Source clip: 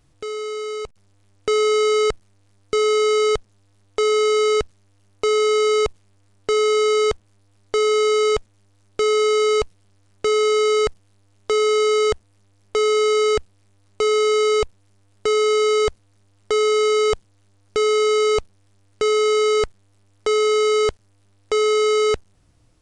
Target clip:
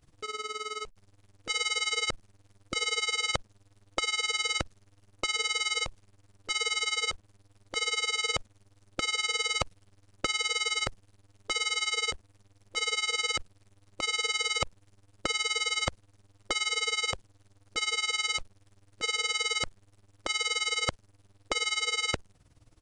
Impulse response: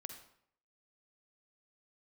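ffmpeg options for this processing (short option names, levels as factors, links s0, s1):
-af "afftfilt=real='re*lt(hypot(re,im),0.501)':imag='im*lt(hypot(re,im),0.501)':win_size=1024:overlap=0.75,tremolo=f=19:d=0.84,volume=1.19"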